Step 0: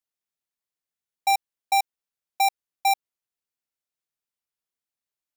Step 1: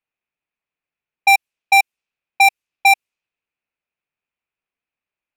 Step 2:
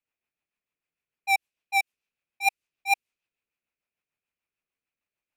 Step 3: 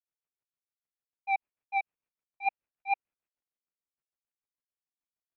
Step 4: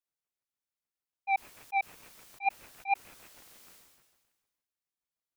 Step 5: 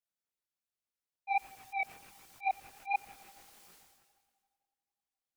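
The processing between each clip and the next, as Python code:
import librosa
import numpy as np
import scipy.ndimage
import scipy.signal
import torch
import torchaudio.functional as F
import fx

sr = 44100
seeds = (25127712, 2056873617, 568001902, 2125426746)

y1 = fx.peak_eq(x, sr, hz=2500.0, db=12.5, octaves=0.34)
y1 = fx.env_lowpass(y1, sr, base_hz=2200.0, full_db=-20.0)
y1 = F.gain(torch.from_numpy(y1), 6.5).numpy()
y2 = fx.rotary(y1, sr, hz=6.7)
y2 = fx.auto_swell(y2, sr, attack_ms=162.0)
y3 = fx.quant_companded(y2, sr, bits=8)
y3 = scipy.ndimage.gaussian_filter1d(y3, 3.7, mode='constant')
y3 = F.gain(torch.from_numpy(y3), -2.5).numpy()
y4 = fx.sustainer(y3, sr, db_per_s=40.0)
y5 = fx.echo_filtered(y4, sr, ms=89, feedback_pct=81, hz=3300.0, wet_db=-24)
y5 = fx.chorus_voices(y5, sr, voices=2, hz=1.3, base_ms=21, depth_ms=3.0, mix_pct=55)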